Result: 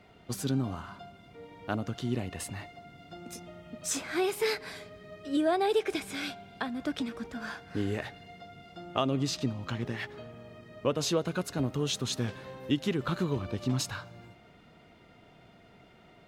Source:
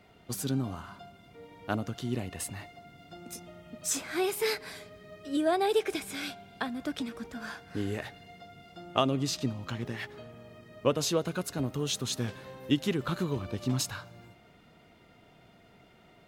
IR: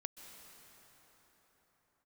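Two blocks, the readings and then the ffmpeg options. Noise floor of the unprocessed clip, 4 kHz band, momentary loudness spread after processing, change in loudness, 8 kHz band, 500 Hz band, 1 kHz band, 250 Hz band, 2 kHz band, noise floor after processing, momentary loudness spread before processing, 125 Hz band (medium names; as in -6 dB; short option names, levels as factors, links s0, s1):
-59 dBFS, -0.5 dB, 19 LU, 0.0 dB, -2.0 dB, 0.0 dB, -0.5 dB, +0.5 dB, +0.5 dB, -58 dBFS, 21 LU, +1.0 dB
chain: -filter_complex "[0:a]highshelf=f=9000:g=-9.5,asplit=2[s0][s1];[s1]alimiter=limit=0.0841:level=0:latency=1:release=207,volume=1.41[s2];[s0][s2]amix=inputs=2:normalize=0,volume=0.501"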